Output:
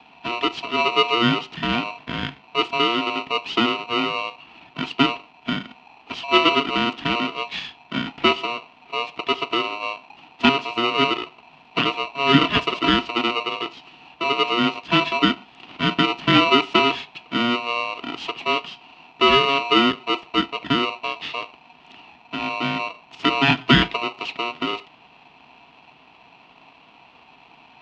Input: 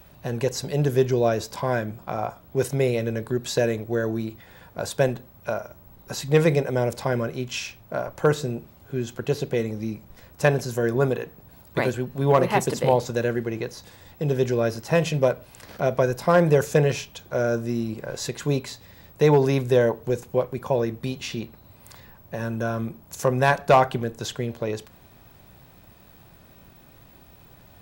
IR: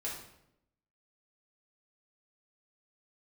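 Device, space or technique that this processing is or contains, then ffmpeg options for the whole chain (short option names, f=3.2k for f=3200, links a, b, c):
ring modulator pedal into a guitar cabinet: -af "aeval=exprs='val(0)*sgn(sin(2*PI*830*n/s))':c=same,highpass=78,equalizer=f=97:t=q:w=4:g=-9,equalizer=f=150:t=q:w=4:g=4,equalizer=f=260:t=q:w=4:g=6,equalizer=f=560:t=q:w=4:g=-9,equalizer=f=1.6k:t=q:w=4:g=-9,equalizer=f=2.8k:t=q:w=4:g=9,lowpass=f=3.8k:w=0.5412,lowpass=f=3.8k:w=1.3066,volume=2dB"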